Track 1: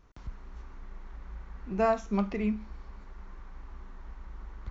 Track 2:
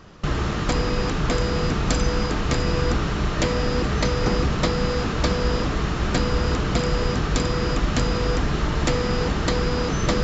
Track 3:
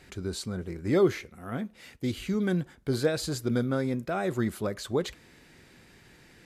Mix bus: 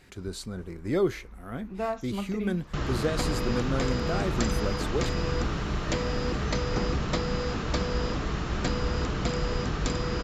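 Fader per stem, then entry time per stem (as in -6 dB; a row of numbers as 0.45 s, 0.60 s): -5.0 dB, -6.5 dB, -2.5 dB; 0.00 s, 2.50 s, 0.00 s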